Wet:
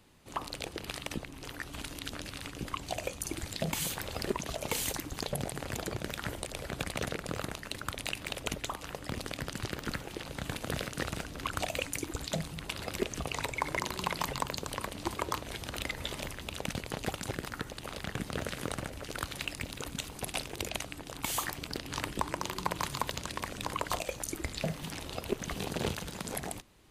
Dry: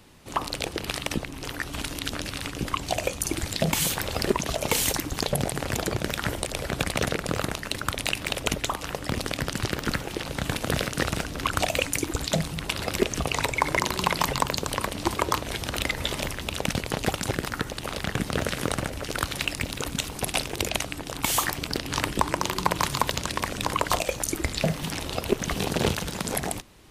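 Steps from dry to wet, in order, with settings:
notch filter 5,500 Hz, Q 23
level −9 dB

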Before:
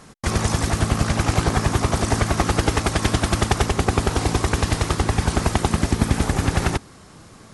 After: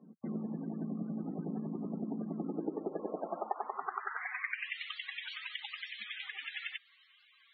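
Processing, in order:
band-pass filter sweep 220 Hz → 3,200 Hz, 0:02.32–0:04.83
downward compressor 2 to 1, threshold −34 dBFS, peak gain reduction 9 dB
elliptic high-pass filter 170 Hz, stop band 80 dB
parametric band 2,000 Hz +6 dB 0.88 octaves
spectral peaks only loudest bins 32
level −2.5 dB

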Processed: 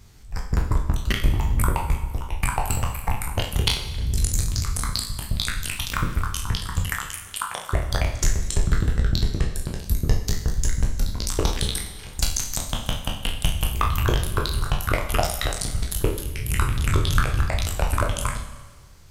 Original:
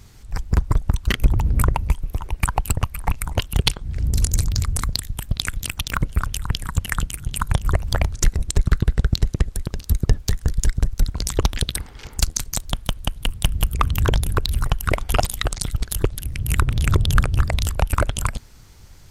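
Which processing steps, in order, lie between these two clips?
peak hold with a decay on every bin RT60 0.38 s
0:06.94–0:07.73: high-pass filter 540 Hz 12 dB per octave
four-comb reverb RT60 1.4 s, combs from 30 ms, DRR 9 dB
level −5 dB

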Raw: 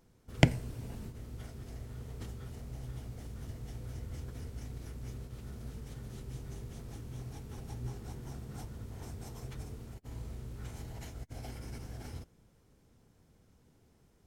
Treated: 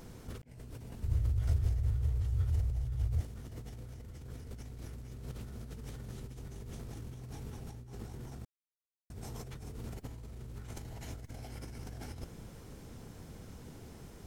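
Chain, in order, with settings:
compressor whose output falls as the input rises −52 dBFS, ratio −1
0:01.03–0:03.21: low shelf with overshoot 130 Hz +11.5 dB, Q 3
0:08.45–0:09.10: silence
level +6 dB

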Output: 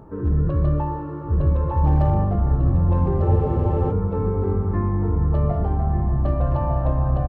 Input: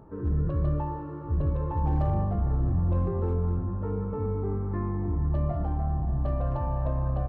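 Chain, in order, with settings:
single-tap delay 1,197 ms −7.5 dB
frozen spectrum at 0:03.27, 0.64 s
level +6.5 dB

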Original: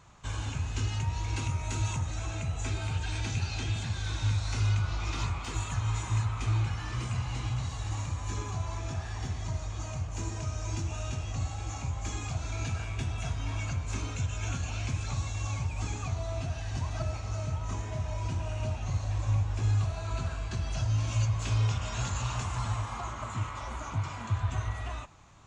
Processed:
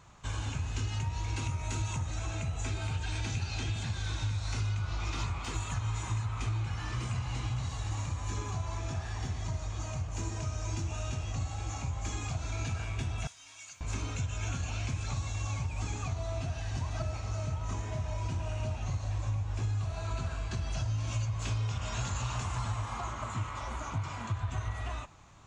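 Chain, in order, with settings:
0:13.27–0:13.81: first difference
downward compressor, threshold −29 dBFS, peak gain reduction 6.5 dB

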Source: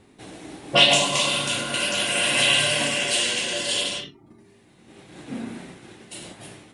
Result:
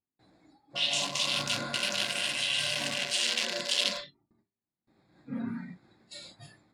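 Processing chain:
adaptive Wiener filter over 15 samples
noise reduction from a noise print of the clip's start 18 dB
reversed playback
downward compressor 20 to 1, threshold −31 dBFS, peak gain reduction 21 dB
reversed playback
parametric band 420 Hz −6.5 dB 0.53 octaves
speech leveller 0.5 s
parametric band 4,800 Hz +13 dB 1.6 octaves
noise gate with hold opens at −60 dBFS

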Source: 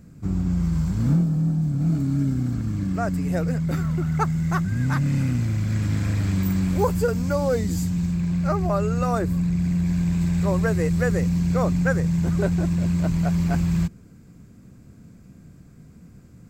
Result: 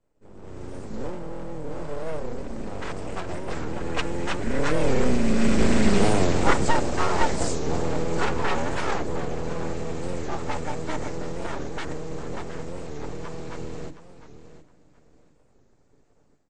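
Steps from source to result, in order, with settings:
lower of the sound and its delayed copy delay 2.1 ms
source passing by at 0:06.38, 19 m/s, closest 11 metres
comb filter 7 ms, depth 63%
hum removal 259.9 Hz, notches 28
automatic gain control gain up to 15 dB
repeating echo 716 ms, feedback 21%, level −13 dB
full-wave rectification
Butterworth low-pass 8,700 Hz 72 dB per octave
wow of a warped record 45 rpm, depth 160 cents
level −2.5 dB

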